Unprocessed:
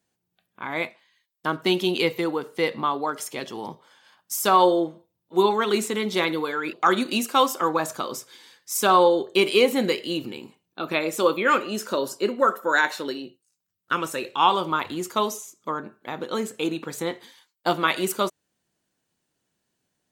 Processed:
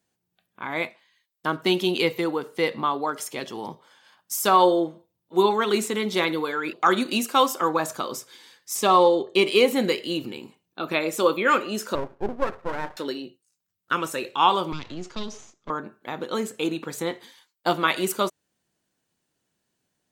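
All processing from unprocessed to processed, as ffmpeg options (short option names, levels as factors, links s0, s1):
-filter_complex "[0:a]asettb=1/sr,asplit=3[s0][s1][s2];[s0]atrim=end=8.754[s3];[s1]atrim=start=8.75:end=9.56,asetpts=PTS-STARTPTS,afade=t=in:d=0.004:c=qsin,afade=t=out:st=0.806:d=0.004:c=qsin,adynamicsmooth=sensitivity=7.5:basefreq=6500,asuperstop=centerf=1500:order=4:qfactor=6.3[s4];[s2]atrim=start=9.556[s5];[s3][s4]acrossfade=d=0.004:c1=hsin:c2=qsin[s6];[s6][s5]acrossfade=d=0.004:c1=qsin:c2=hsin,asettb=1/sr,asplit=3[s7][s8][s9];[s7]atrim=end=11.954[s10];[s8]atrim=start=11.95:end=12.97,asetpts=PTS-STARTPTS,afade=t=in:d=0.004:c=qsin,afade=t=out:st=1.016:d=0.004:c=qsin,lowpass=f=1000:w=0.5412,lowpass=f=1000:w=1.3066,aeval=exprs='max(val(0),0)':c=same[s11];[s9]atrim=start=12.966[s12];[s10][s11]acrossfade=d=0.004:c1=hsin:c2=qsin[s13];[s13][s12]acrossfade=d=0.004:c1=qsin:c2=hsin,asettb=1/sr,asplit=3[s14][s15][s16];[s14]atrim=end=14.724[s17];[s15]atrim=start=14.72:end=15.7,asetpts=PTS-STARTPTS,afade=t=in:d=0.004:c=qsin,afade=t=out:st=0.976:d=0.004:c=qsin,aeval=exprs='if(lt(val(0),0),0.251*val(0),val(0))':c=same,lowpass=f=6000:w=0.5412,lowpass=f=6000:w=1.3066,acrossover=split=330|3000[s18][s19][s20];[s19]acompressor=threshold=0.00891:ratio=4:attack=3.2:release=140:knee=2.83:detection=peak[s21];[s18][s21][s20]amix=inputs=3:normalize=0[s22];[s16]atrim=start=15.696[s23];[s17][s22]acrossfade=d=0.004:c1=hsin:c2=qsin[s24];[s24][s23]acrossfade=d=0.004:c1=qsin:c2=hsin"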